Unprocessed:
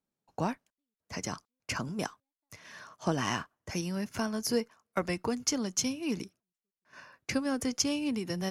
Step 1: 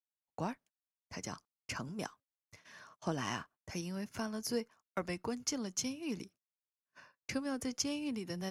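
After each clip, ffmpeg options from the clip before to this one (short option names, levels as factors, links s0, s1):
-af "agate=range=0.0562:threshold=0.00251:ratio=16:detection=peak,volume=0.473"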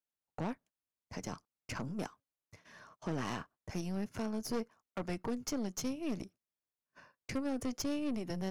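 -af "tiltshelf=f=1100:g=4,aeval=exprs='(tanh(50.1*val(0)+0.6)-tanh(0.6))/50.1':c=same,volume=1.41"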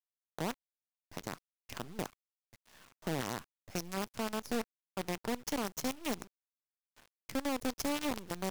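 -af "acrusher=bits=6:dc=4:mix=0:aa=0.000001,volume=0.841"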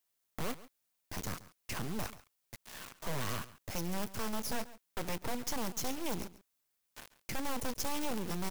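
-af "crystalizer=i=0.5:c=0,aeval=exprs='0.0891*sin(PI/2*5.62*val(0)/0.0891)':c=same,aecho=1:1:138:0.133,volume=0.422"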